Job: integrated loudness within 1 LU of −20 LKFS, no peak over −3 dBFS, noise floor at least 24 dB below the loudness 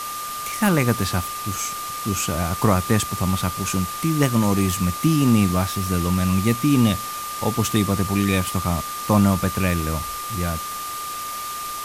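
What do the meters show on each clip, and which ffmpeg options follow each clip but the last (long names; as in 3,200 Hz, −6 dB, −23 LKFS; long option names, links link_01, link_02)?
interfering tone 1,200 Hz; level of the tone −29 dBFS; background noise floor −30 dBFS; target noise floor −46 dBFS; integrated loudness −21.5 LKFS; sample peak −4.0 dBFS; target loudness −20.0 LKFS
→ -af "bandreject=frequency=1200:width=30"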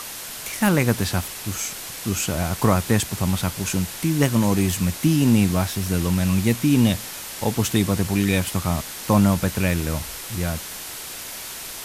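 interfering tone none found; background noise floor −35 dBFS; target noise floor −46 dBFS
→ -af "afftdn=noise_reduction=11:noise_floor=-35"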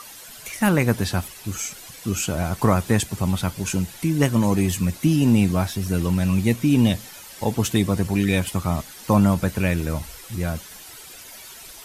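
background noise floor −42 dBFS; target noise floor −46 dBFS
→ -af "afftdn=noise_reduction=6:noise_floor=-42"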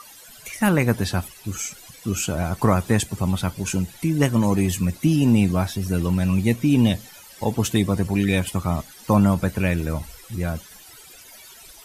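background noise floor −46 dBFS; integrated loudness −22.0 LKFS; sample peak −4.0 dBFS; target loudness −20.0 LKFS
→ -af "volume=2dB,alimiter=limit=-3dB:level=0:latency=1"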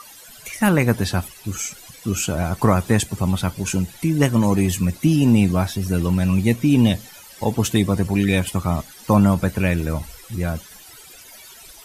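integrated loudness −20.0 LKFS; sample peak −3.0 dBFS; background noise floor −44 dBFS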